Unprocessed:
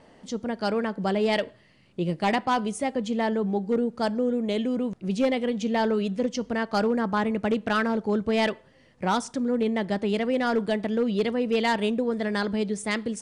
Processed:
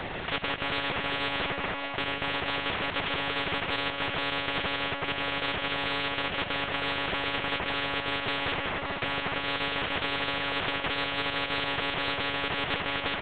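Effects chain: one-bit delta coder 16 kbps, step -39.5 dBFS; comb 2.2 ms, depth 76%; crossover distortion -43 dBFS; frequency-shifting echo 149 ms, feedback 56%, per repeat +50 Hz, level -10 dB; monotone LPC vocoder at 8 kHz 280 Hz; spectrum-flattening compressor 10:1

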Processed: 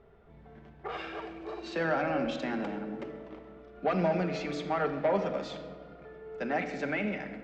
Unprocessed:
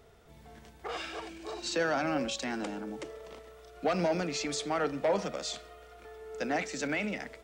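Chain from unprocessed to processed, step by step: low-pass 2.6 kHz 12 dB/octave; simulated room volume 3800 m³, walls mixed, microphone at 1.2 m; tape noise reduction on one side only decoder only

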